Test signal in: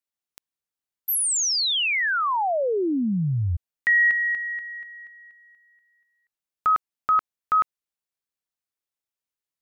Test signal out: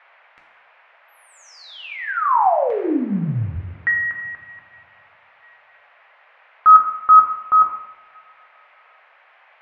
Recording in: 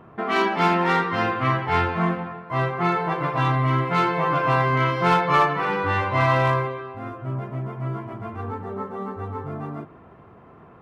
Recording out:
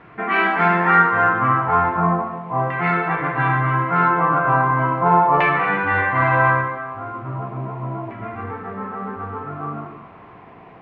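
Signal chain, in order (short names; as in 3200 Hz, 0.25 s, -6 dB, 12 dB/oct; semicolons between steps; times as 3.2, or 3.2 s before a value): two-slope reverb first 0.83 s, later 2.7 s, from -19 dB, DRR 0 dB; LFO low-pass saw down 0.37 Hz 850–2300 Hz; band noise 580–2400 Hz -52 dBFS; gain -1.5 dB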